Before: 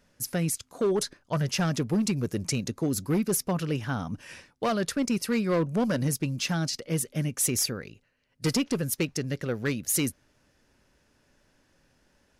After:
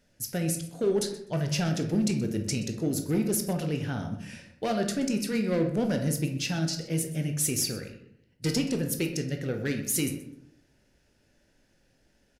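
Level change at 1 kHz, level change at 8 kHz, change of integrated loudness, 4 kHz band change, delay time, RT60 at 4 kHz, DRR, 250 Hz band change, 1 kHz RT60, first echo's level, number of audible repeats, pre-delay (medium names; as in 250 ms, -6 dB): -4.0 dB, -1.5 dB, -0.5 dB, -1.0 dB, 126 ms, 0.45 s, 4.0 dB, 0.0 dB, 0.70 s, -17.0 dB, 1, 15 ms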